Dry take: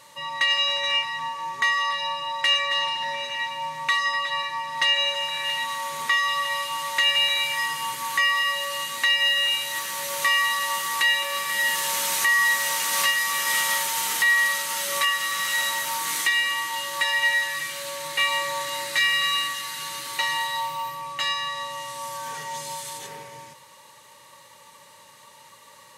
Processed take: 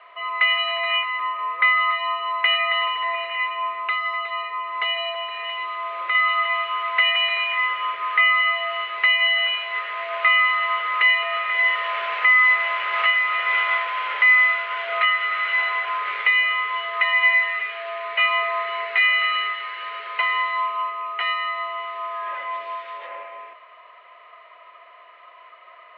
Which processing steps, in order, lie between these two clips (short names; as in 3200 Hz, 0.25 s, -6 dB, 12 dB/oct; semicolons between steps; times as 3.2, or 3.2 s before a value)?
3.71–6.15 dynamic EQ 1700 Hz, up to -7 dB, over -36 dBFS, Q 0.86; mistuned SSB +110 Hz 330–2600 Hz; gain +5 dB